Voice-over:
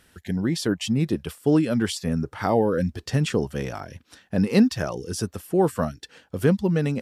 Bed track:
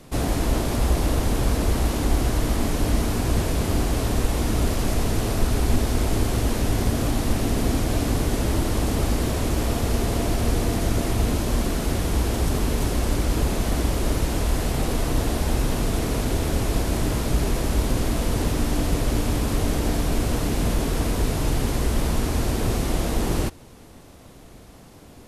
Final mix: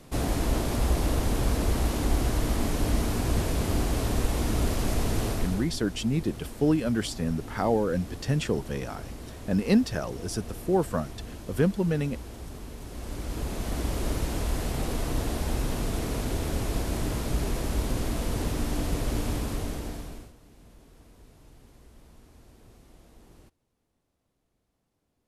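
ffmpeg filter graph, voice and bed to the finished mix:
ffmpeg -i stem1.wav -i stem2.wav -filter_complex "[0:a]adelay=5150,volume=-4dB[link_01];[1:a]volume=8dB,afade=type=out:start_time=5.25:duration=0.45:silence=0.199526,afade=type=in:start_time=12.85:duration=1.14:silence=0.251189,afade=type=out:start_time=19.3:duration=1.03:silence=0.0562341[link_02];[link_01][link_02]amix=inputs=2:normalize=0" out.wav

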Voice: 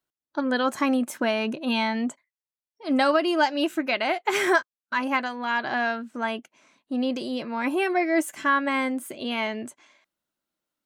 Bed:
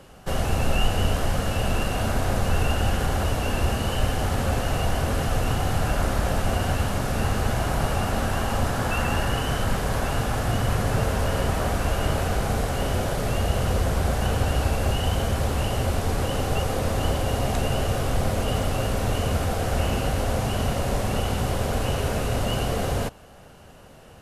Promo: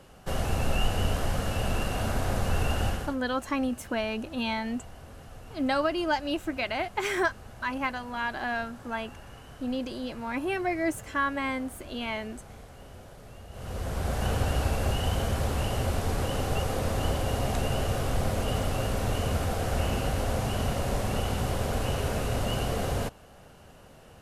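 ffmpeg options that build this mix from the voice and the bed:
ffmpeg -i stem1.wav -i stem2.wav -filter_complex "[0:a]adelay=2700,volume=-5.5dB[link_01];[1:a]volume=14dB,afade=type=out:start_time=2.85:duration=0.31:silence=0.125893,afade=type=in:start_time=13.5:duration=0.79:silence=0.11885[link_02];[link_01][link_02]amix=inputs=2:normalize=0" out.wav

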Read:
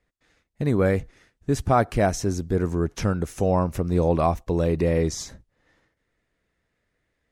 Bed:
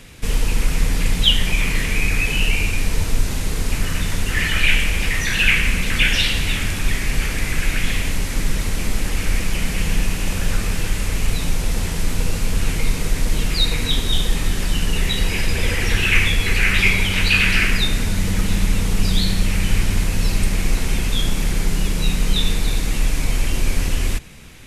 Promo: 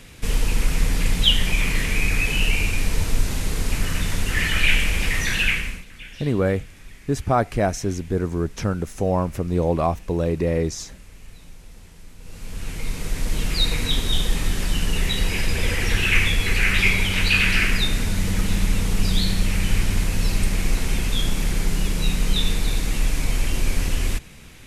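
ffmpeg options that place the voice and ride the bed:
ffmpeg -i stem1.wav -i stem2.wav -filter_complex "[0:a]adelay=5600,volume=0dB[link_01];[1:a]volume=19dB,afade=type=out:start_time=5.29:duration=0.56:silence=0.0841395,afade=type=in:start_time=12.2:duration=1.42:silence=0.0891251[link_02];[link_01][link_02]amix=inputs=2:normalize=0" out.wav

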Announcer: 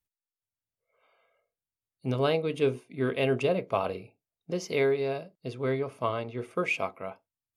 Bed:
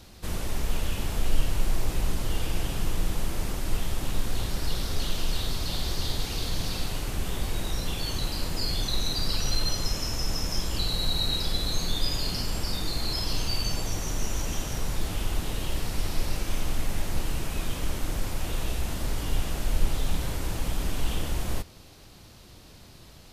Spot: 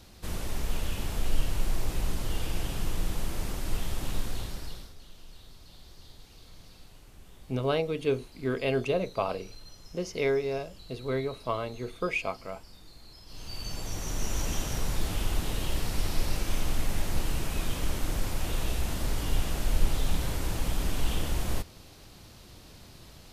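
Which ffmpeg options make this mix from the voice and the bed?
ffmpeg -i stem1.wav -i stem2.wav -filter_complex "[0:a]adelay=5450,volume=-1.5dB[link_01];[1:a]volume=18.5dB,afade=type=out:start_time=4.16:duration=0.78:silence=0.112202,afade=type=in:start_time=13.26:duration=1.17:silence=0.0841395[link_02];[link_01][link_02]amix=inputs=2:normalize=0" out.wav

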